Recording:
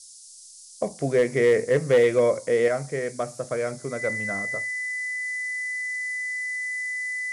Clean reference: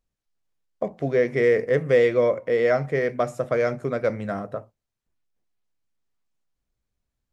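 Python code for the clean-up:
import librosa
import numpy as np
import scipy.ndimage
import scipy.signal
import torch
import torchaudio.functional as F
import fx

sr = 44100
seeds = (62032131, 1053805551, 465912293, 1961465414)

y = fx.fix_declip(x, sr, threshold_db=-12.0)
y = fx.notch(y, sr, hz=2000.0, q=30.0)
y = fx.noise_reduce(y, sr, print_start_s=0.05, print_end_s=0.55, reduce_db=30.0)
y = fx.gain(y, sr, db=fx.steps((0.0, 0.0), (2.68, 5.0)))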